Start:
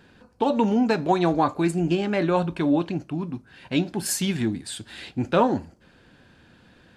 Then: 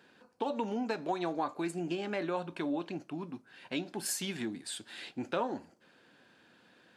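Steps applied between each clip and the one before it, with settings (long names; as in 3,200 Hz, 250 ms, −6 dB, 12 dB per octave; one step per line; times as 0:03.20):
Bessel high-pass filter 310 Hz, order 2
downward compressor 2 to 1, threshold −28 dBFS, peak gain reduction 7.5 dB
level −5.5 dB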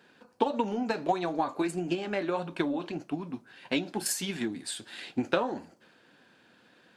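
transient designer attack +8 dB, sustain +4 dB
flanger 1.6 Hz, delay 3.9 ms, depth 6.6 ms, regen −62%
level +5.5 dB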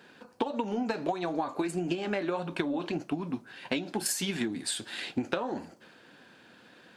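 downward compressor 6 to 1, threshold −32 dBFS, peak gain reduction 12 dB
level +5 dB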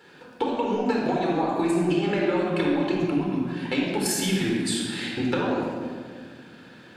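rectangular room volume 2,600 cubic metres, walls mixed, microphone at 4.2 metres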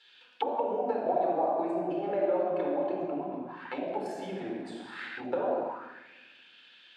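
envelope filter 630–3,600 Hz, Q 3.7, down, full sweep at −22 dBFS
level +4 dB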